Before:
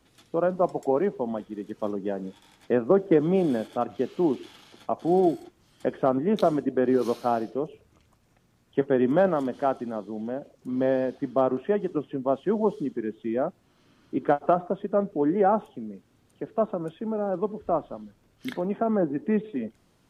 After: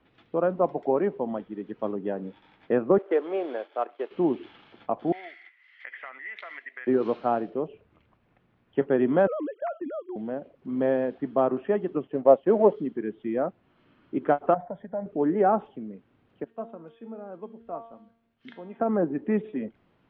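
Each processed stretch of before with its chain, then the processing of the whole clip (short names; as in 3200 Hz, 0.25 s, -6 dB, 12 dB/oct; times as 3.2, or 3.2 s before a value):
2.98–4.11 G.711 law mismatch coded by A + HPF 410 Hz 24 dB/oct
5.12–6.87 resonant high-pass 2000 Hz, resonance Q 15 + compressor 12:1, threshold -34 dBFS
9.27–10.16 sine-wave speech + gate -39 dBFS, range -7 dB + compressor 4:1, threshold -28 dBFS
12.07–12.76 G.711 law mismatch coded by A + bell 570 Hz +11 dB 0.96 oct
14.54–15.06 LPF 3000 Hz + compressor 3:1, threshold -24 dBFS + fixed phaser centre 1800 Hz, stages 8
16.44–18.8 high shelf 3100 Hz +10.5 dB + resonator 230 Hz, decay 0.62 s, mix 80%
whole clip: LPF 3000 Hz 24 dB/oct; low shelf 100 Hz -6 dB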